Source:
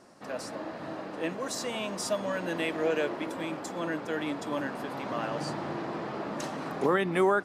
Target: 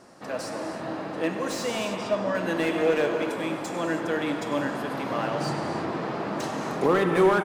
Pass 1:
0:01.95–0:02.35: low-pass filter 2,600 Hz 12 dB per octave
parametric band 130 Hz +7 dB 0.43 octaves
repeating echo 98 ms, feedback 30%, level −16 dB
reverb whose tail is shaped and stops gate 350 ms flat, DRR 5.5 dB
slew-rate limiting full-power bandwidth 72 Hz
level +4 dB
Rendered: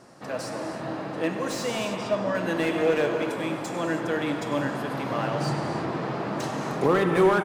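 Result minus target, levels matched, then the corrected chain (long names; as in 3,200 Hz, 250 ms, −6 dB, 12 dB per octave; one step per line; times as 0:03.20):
125 Hz band +3.0 dB
0:01.95–0:02.35: low-pass filter 2,600 Hz 12 dB per octave
repeating echo 98 ms, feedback 30%, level −16 dB
reverb whose tail is shaped and stops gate 350 ms flat, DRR 5.5 dB
slew-rate limiting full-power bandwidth 72 Hz
level +4 dB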